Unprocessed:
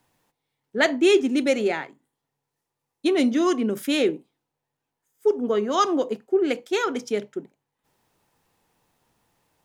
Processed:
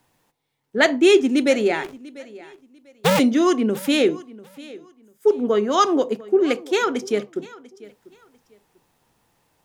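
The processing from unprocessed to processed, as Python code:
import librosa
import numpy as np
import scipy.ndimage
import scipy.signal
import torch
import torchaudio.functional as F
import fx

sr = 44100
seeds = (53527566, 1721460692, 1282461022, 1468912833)

y = fx.cycle_switch(x, sr, every=2, mode='inverted', at=(1.83, 3.18), fade=0.02)
y = fx.echo_feedback(y, sr, ms=694, feedback_pct=24, wet_db=-20.5)
y = F.gain(torch.from_numpy(y), 3.5).numpy()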